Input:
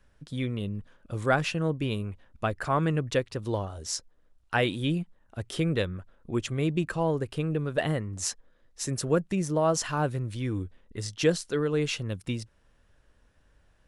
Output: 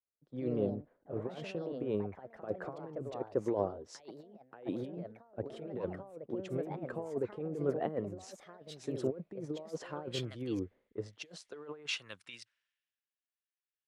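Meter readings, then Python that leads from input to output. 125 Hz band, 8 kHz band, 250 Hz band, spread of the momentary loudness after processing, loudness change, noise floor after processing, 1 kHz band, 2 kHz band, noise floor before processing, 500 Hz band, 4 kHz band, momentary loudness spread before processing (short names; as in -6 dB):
-14.5 dB, -19.0 dB, -9.0 dB, 14 LU, -10.0 dB, under -85 dBFS, -13.0 dB, -15.0 dB, -64 dBFS, -7.5 dB, -10.5 dB, 11 LU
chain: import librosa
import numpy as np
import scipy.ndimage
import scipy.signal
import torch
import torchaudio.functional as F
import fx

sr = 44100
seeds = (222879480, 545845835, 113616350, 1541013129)

y = fx.over_compress(x, sr, threshold_db=-30.0, ratio=-0.5)
y = fx.filter_sweep_bandpass(y, sr, from_hz=450.0, to_hz=2200.0, start_s=10.95, end_s=12.82, q=1.5)
y = fx.echo_pitch(y, sr, ms=140, semitones=3, count=2, db_per_echo=-6.0)
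y = fx.band_widen(y, sr, depth_pct=100)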